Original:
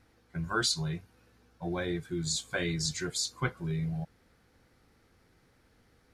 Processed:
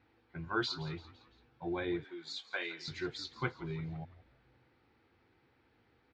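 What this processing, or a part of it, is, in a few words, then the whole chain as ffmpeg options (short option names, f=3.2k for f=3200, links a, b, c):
frequency-shifting delay pedal into a guitar cabinet: -filter_complex "[0:a]asplit=5[a][b][c][d][e];[b]adelay=169,afreqshift=-72,volume=-17dB[f];[c]adelay=338,afreqshift=-144,volume=-23.2dB[g];[d]adelay=507,afreqshift=-216,volume=-29.4dB[h];[e]adelay=676,afreqshift=-288,volume=-35.6dB[i];[a][f][g][h][i]amix=inputs=5:normalize=0,highpass=77,equalizer=f=180:t=q:w=4:g=-7,equalizer=f=340:t=q:w=4:g=5,equalizer=f=600:t=q:w=4:g=-3,equalizer=f=870:t=q:w=4:g=5,equalizer=f=2.5k:t=q:w=4:g=4,lowpass=f=4.1k:w=0.5412,lowpass=f=4.1k:w=1.3066,asettb=1/sr,asplit=3[j][k][l];[j]atrim=end=2.044[m];[k]atrim=start=2.04:end=2.88,asetpts=PTS-STARTPTS,afade=t=in:d=0.004:c=qsin,afade=t=out:st=0.836:d=0.004:c=qsin,highpass=600[n];[l]atrim=start=2.876[o];[m][n]acrossfade=d=0.004:c1=hsin:c2=qsin[p];[p][o]acrossfade=d=0.004:c1=qsin:c2=hsin,volume=-4.5dB"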